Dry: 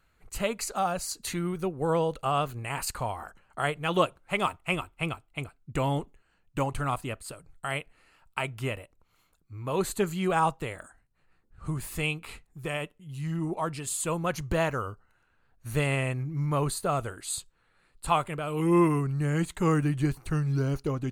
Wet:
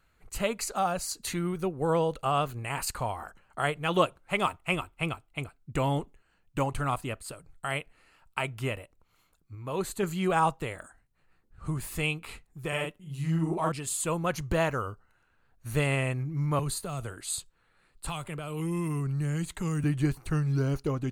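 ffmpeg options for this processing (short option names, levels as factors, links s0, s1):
-filter_complex "[0:a]asettb=1/sr,asplit=3[s0][s1][s2];[s0]atrim=end=12.684[s3];[s1]atrim=start=12.68:end=13.72,asetpts=PTS-STARTPTS,afade=t=in:d=0.004:c=qsin,afade=t=out:st=1.036:d=0.004:c=qsin,asplit=2[s4][s5];[s5]adelay=43,volume=0.794[s6];[s4][s6]amix=inputs=2:normalize=0,atrim=end_sample=45864[s7];[s2]atrim=start=13.716[s8];[s3][s7]acrossfade=d=0.004:c1=hsin:c2=qsin[s9];[s9][s8]acrossfade=d=0.004:c1=qsin:c2=hsin,asettb=1/sr,asplit=3[s10][s11][s12];[s10]atrim=end=16.594[s13];[s11]atrim=start=16.59:end=19.84,asetpts=PTS-STARTPTS,afade=t=in:d=0.004:c=qsin,afade=t=out:st=3.246:d=0.004:c=qsin,acrossover=split=170|3000[s14][s15][s16];[s15]acompressor=threshold=0.0178:ratio=6:attack=3.2:release=140:knee=2.83:detection=peak[s17];[s14][s17][s16]amix=inputs=3:normalize=0[s18];[s12]atrim=start=19.836[s19];[s13][s18]acrossfade=d=0.004:c1=hsin:c2=qsin[s20];[s20][s19]acrossfade=d=0.004:c1=qsin:c2=hsin,asplit=3[s21][s22][s23];[s21]atrim=end=9.552[s24];[s22]atrim=start=9.548:end=10.032,asetpts=PTS-STARTPTS,volume=0.668[s25];[s23]atrim=start=10.028[s26];[s24][s25]acrossfade=d=0.004:c1=hsin:c2=hsin[s27];[s27][s26]acrossfade=d=0.004:c1=hsin:c2=hsin"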